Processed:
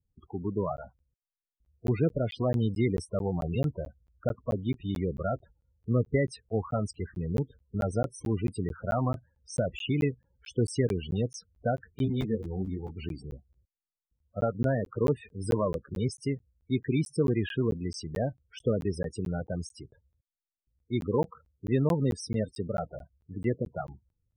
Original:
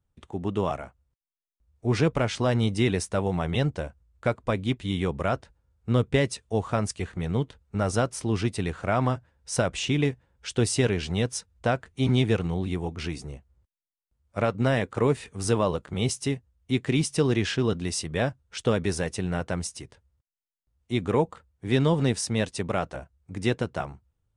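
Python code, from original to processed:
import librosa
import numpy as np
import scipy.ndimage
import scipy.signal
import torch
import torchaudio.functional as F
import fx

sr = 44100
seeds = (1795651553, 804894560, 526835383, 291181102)

y = fx.spec_topn(x, sr, count=16)
y = fx.buffer_crackle(y, sr, first_s=0.77, period_s=0.22, block=512, kind='zero')
y = fx.ensemble(y, sr, at=(12.05, 12.94), fade=0.02)
y = y * librosa.db_to_amplitude(-3.0)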